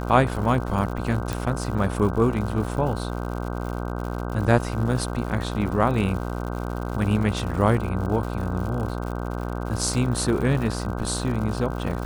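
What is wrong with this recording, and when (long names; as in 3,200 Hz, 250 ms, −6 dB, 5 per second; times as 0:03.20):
mains buzz 60 Hz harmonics 26 −29 dBFS
surface crackle 150 per second −32 dBFS
0:01.33: click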